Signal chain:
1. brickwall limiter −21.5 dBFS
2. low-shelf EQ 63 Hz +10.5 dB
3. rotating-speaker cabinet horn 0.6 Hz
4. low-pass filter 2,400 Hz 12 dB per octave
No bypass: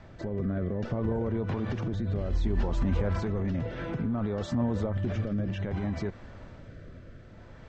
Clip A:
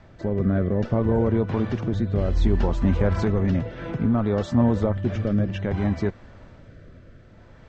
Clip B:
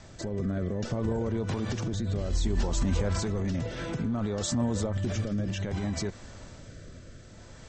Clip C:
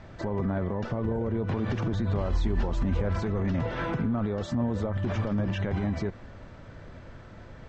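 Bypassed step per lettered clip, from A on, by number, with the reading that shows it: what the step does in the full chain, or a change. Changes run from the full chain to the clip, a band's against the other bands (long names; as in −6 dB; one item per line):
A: 1, average gain reduction 4.5 dB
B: 4, 4 kHz band +9.0 dB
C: 3, 1 kHz band +2.5 dB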